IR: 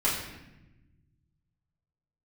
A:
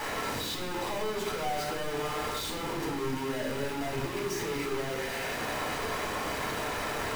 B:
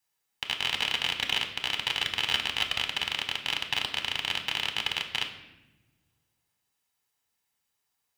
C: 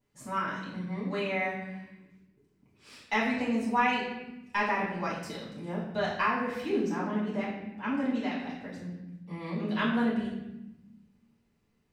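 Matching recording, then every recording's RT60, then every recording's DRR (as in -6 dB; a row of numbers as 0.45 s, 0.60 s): C; 1.0 s, no single decay rate, 1.0 s; -2.5 dB, 4.5 dB, -8.5 dB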